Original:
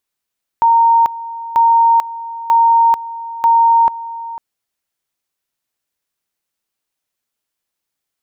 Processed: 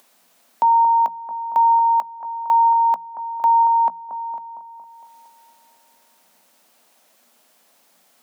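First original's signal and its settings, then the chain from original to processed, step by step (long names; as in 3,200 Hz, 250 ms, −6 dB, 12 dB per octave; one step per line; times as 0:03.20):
tone at two levels in turn 923 Hz −7 dBFS, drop 16.5 dB, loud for 0.44 s, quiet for 0.50 s, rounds 4
upward compression, threshold −26 dBFS
Chebyshev high-pass with heavy ripple 170 Hz, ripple 9 dB
on a send: bucket-brigade delay 229 ms, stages 2,048, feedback 62%, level −10 dB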